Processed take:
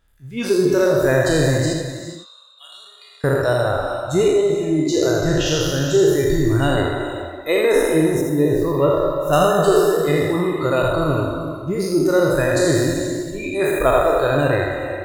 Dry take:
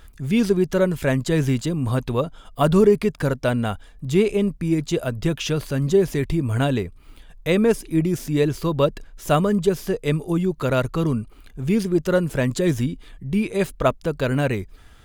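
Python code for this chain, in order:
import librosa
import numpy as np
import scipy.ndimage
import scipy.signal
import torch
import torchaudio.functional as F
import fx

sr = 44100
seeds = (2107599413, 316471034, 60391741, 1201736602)

y = fx.spec_trails(x, sr, decay_s=2.19)
y = fx.noise_reduce_blind(y, sr, reduce_db=19)
y = fx.ladder_bandpass(y, sr, hz=4100.0, resonance_pct=50, at=(1.73, 3.24))
y = fx.peak_eq(y, sr, hz=5800.0, db=-13.5, octaves=2.8, at=(8.21, 9.33))
y = y + 10.0 ** (-6.0 / 20.0) * np.pad(y, (int(82 * sr / 1000.0), 0))[:len(y)]
y = fx.rev_gated(y, sr, seeds[0], gate_ms=450, shape='rising', drr_db=9.0)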